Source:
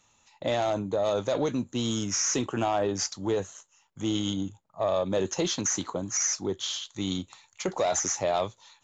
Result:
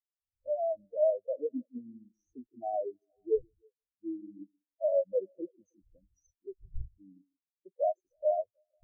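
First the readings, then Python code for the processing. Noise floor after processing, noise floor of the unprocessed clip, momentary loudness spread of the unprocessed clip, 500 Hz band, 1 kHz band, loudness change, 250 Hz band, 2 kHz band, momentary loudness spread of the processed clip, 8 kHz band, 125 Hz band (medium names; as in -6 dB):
under -85 dBFS, -67 dBFS, 8 LU, -3.0 dB, -8.0 dB, -5.0 dB, -13.5 dB, under -40 dB, 20 LU, under -40 dB, under -15 dB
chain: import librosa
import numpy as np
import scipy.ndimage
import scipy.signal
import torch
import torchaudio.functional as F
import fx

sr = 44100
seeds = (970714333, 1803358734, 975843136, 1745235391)

y = fx.wiener(x, sr, points=41)
y = fx.dmg_wind(y, sr, seeds[0], corner_hz=98.0, level_db=-38.0)
y = fx.dynamic_eq(y, sr, hz=600.0, q=0.75, threshold_db=-40.0, ratio=4.0, max_db=5)
y = fx.echo_stepped(y, sr, ms=158, hz=270.0, octaves=0.7, feedback_pct=70, wet_db=-6.0)
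y = fx.spectral_expand(y, sr, expansion=4.0)
y = F.gain(torch.from_numpy(y), -6.0).numpy()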